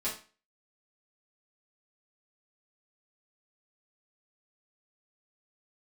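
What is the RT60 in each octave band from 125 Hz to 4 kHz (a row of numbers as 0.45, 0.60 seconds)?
0.35, 0.35, 0.35, 0.35, 0.35, 0.35 seconds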